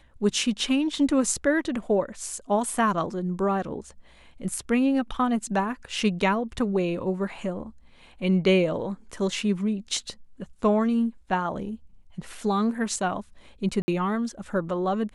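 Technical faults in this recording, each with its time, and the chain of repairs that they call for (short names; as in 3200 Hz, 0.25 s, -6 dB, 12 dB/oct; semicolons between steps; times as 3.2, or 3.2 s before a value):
13.82–13.88 gap 60 ms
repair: interpolate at 13.82, 60 ms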